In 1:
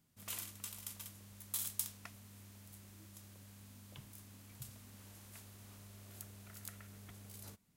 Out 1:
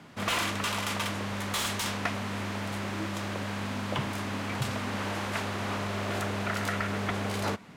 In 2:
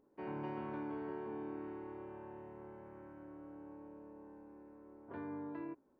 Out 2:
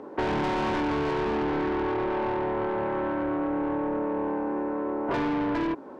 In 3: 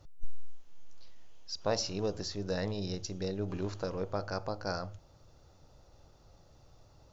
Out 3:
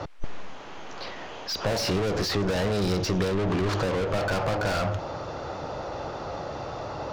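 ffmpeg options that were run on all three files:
-filter_complex "[0:a]aemphasis=mode=reproduction:type=75fm,asplit=2[a][b];[b]highpass=f=720:p=1,volume=39dB,asoftclip=type=tanh:threshold=-17dB[c];[a][c]amix=inputs=2:normalize=0,lowpass=f=2.1k:p=1,volume=-6dB,acrossover=split=180|3000[d][e][f];[e]acompressor=threshold=-28dB:ratio=6[g];[d][g][f]amix=inputs=3:normalize=0,volume=3dB"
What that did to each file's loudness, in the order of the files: +16.0, +19.0, +8.0 LU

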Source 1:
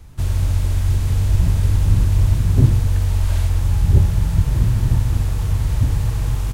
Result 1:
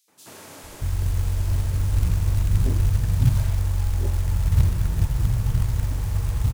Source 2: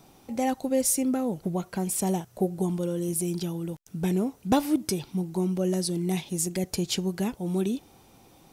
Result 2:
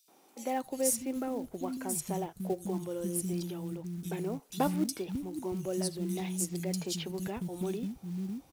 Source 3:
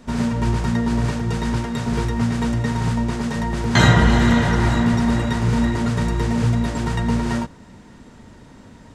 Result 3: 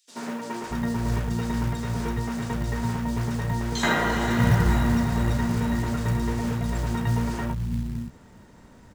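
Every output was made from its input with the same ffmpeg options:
-filter_complex "[0:a]acrossover=split=240|3400[a][b][c];[b]adelay=80[d];[a]adelay=630[e];[e][d][c]amix=inputs=3:normalize=0,acrusher=bits=6:mode=log:mix=0:aa=0.000001,volume=-5dB"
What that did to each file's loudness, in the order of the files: -5.0, -6.5, -6.0 LU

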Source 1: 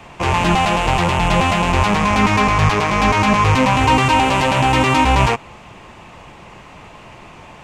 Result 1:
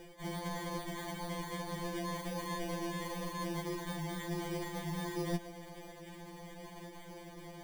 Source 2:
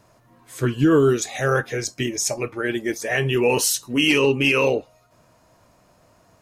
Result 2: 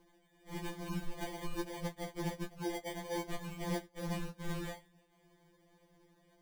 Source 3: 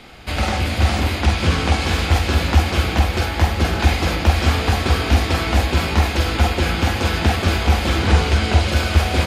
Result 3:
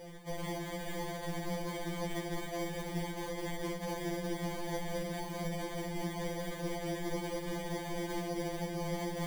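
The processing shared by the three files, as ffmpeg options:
-af "highpass=f=1.1k:w=0.5412,highpass=f=1.1k:w=1.3066,highshelf=f=10k:g=7,areverse,acompressor=threshold=-31dB:ratio=12,areverse,acrusher=samples=33:mix=1:aa=0.000001,afftfilt=real='re*2.83*eq(mod(b,8),0)':imag='im*2.83*eq(mod(b,8),0)':win_size=2048:overlap=0.75,volume=-1dB"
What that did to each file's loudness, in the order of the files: -25.5, -21.0, -20.0 LU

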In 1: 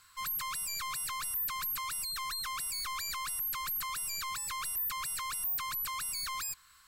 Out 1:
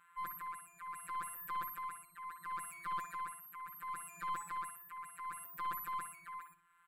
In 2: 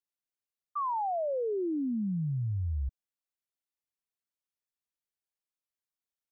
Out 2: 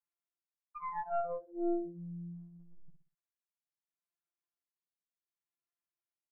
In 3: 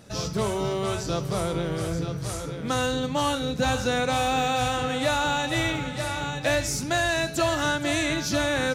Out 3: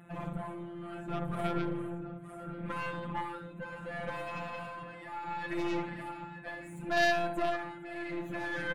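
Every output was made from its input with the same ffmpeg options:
-filter_complex "[0:a]equalizer=f=450:t=o:w=0.37:g=-14.5,asplit=2[a][b];[b]alimiter=limit=-23dB:level=0:latency=1:release=14,volume=2.5dB[c];[a][c]amix=inputs=2:normalize=0,highpass=110,lowpass=7.6k,tremolo=f=0.7:d=0.66,afftfilt=real='hypot(re,im)*cos(PI*b)':imag='0':win_size=1024:overlap=0.75,asoftclip=type=tanh:threshold=-13.5dB,asuperstop=centerf=5200:order=4:qfactor=0.61,asplit=2[d][e];[e]adelay=61,lowpass=f=2.3k:p=1,volume=-7dB,asplit=2[f][g];[g]adelay=61,lowpass=f=2.3k:p=1,volume=0.36,asplit=2[h][i];[i]adelay=61,lowpass=f=2.3k:p=1,volume=0.36,asplit=2[j][k];[k]adelay=61,lowpass=f=2.3k:p=1,volume=0.36[l];[f][h][j][l]amix=inputs=4:normalize=0[m];[d][m]amix=inputs=2:normalize=0,aeval=exprs='0.224*(cos(1*acos(clip(val(0)/0.224,-1,1)))-cos(1*PI/2))+0.112*(cos(2*acos(clip(val(0)/0.224,-1,1)))-cos(2*PI/2))+0.0891*(cos(4*acos(clip(val(0)/0.224,-1,1)))-cos(4*PI/2))':c=same,volume=-5dB"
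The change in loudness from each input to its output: -9.5, -6.0, -10.5 LU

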